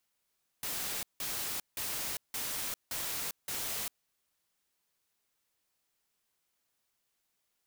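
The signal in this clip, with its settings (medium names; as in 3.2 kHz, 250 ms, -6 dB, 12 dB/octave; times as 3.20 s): noise bursts white, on 0.40 s, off 0.17 s, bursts 6, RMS -36.5 dBFS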